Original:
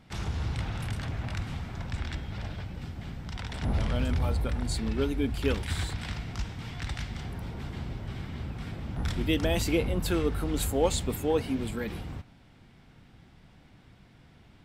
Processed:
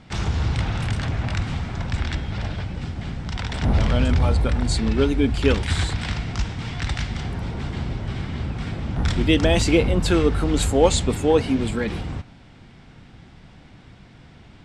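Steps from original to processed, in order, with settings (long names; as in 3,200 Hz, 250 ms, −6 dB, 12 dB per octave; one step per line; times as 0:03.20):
low-pass filter 8,700 Hz 24 dB per octave
level +9 dB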